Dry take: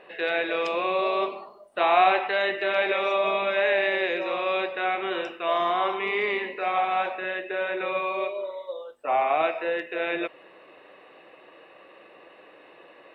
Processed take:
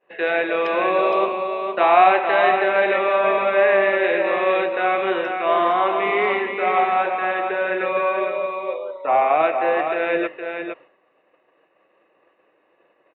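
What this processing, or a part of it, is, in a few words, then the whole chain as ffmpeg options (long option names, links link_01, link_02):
hearing-loss simulation: -filter_complex "[0:a]lowpass=2400,agate=range=-33dB:threshold=-39dB:ratio=3:detection=peak,asettb=1/sr,asplit=3[link_01][link_02][link_03];[link_01]atrim=end=2.684[link_04];[link_02]atrim=start=2.68:end=4.04,asetpts=PTS-STARTPTS,afade=type=in:duration=0.004:curve=qsin,afade=type=out:start_time=1.356:duration=0.004:curve=qsin,acrossover=split=3200[link_05][link_06];[link_06]acompressor=threshold=-51dB:ratio=4:attack=1:release=60[link_07];[link_05][link_07]amix=inputs=2:normalize=0[link_08];[link_03]atrim=start=4.036[link_09];[link_04][link_08]acrossfade=duration=0.004:curve1=hsin:curve2=qsin[link_10];[link_10][link_09]acrossfade=duration=0.004:curve1=qsin:curve2=hsin,aecho=1:1:464:0.501,volume=6dB"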